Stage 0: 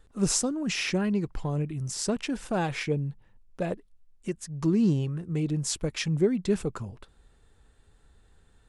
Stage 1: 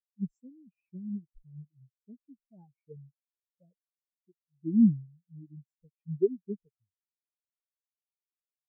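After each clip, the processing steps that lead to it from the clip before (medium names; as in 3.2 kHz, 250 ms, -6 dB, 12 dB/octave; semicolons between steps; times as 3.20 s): spectral contrast expander 4:1; trim -2 dB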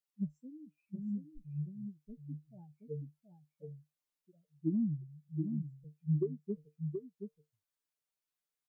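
compression 6:1, threshold -30 dBFS, peak gain reduction 13 dB; feedback comb 150 Hz, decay 0.16 s, harmonics all, mix 80%; delay 726 ms -6.5 dB; trim +9 dB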